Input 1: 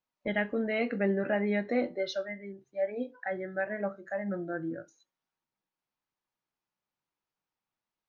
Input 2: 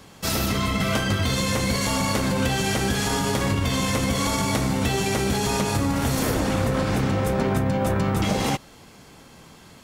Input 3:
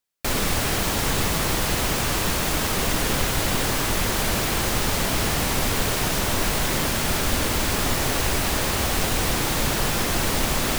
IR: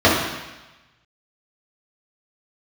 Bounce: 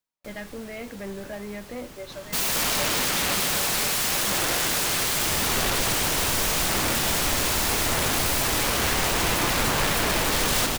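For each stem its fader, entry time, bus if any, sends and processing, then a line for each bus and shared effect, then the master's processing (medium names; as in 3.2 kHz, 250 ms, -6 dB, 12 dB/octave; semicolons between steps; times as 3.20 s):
-6.0 dB, 0.00 s, no send, no echo send, saturation -23.5 dBFS, distortion -16 dB
+1.5 dB, 2.10 s, no send, echo send -6 dB, high-pass 70 Hz 12 dB/octave; integer overflow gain 22.5 dB
-5.5 dB, 0.00 s, no send, no echo send, auto duck -18 dB, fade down 0.25 s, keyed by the first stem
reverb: none
echo: delay 225 ms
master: gain riding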